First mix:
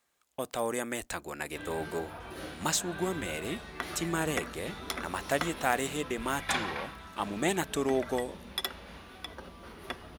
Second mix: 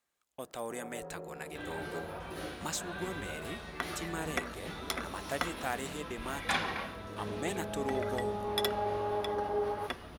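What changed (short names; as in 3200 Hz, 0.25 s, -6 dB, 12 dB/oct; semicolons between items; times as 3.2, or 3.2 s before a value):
speech -7.5 dB; first sound: unmuted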